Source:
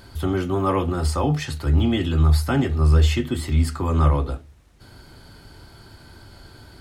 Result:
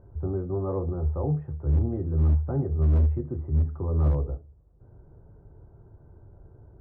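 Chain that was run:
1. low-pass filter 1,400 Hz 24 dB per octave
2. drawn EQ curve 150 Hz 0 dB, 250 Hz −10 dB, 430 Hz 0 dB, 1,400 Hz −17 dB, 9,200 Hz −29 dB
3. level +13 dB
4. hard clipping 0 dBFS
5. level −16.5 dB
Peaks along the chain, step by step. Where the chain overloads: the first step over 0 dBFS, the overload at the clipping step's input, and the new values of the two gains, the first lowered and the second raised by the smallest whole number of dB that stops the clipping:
−7.5, −8.0, +5.0, 0.0, −16.5 dBFS
step 3, 5.0 dB
step 3 +8 dB, step 5 −11.5 dB

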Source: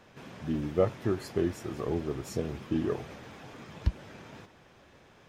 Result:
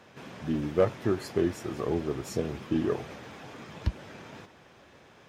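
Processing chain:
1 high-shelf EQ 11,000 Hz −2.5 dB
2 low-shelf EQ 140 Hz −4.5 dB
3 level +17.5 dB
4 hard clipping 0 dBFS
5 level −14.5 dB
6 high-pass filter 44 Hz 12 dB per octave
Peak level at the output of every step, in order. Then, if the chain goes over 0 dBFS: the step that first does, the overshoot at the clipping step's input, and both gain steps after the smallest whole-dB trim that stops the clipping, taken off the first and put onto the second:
−12.5, −13.0, +4.5, 0.0, −14.5, −13.0 dBFS
step 3, 4.5 dB
step 3 +12.5 dB, step 5 −9.5 dB

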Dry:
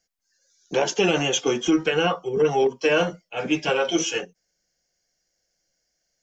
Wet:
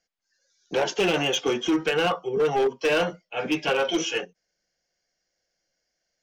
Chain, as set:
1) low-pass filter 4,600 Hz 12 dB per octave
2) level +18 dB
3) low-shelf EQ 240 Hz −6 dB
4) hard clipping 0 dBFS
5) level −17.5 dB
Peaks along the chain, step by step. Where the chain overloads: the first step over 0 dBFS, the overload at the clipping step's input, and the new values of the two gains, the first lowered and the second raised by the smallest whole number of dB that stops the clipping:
−9.0, +9.0, +9.5, 0.0, −17.5 dBFS
step 2, 9.5 dB
step 2 +8 dB, step 5 −7.5 dB

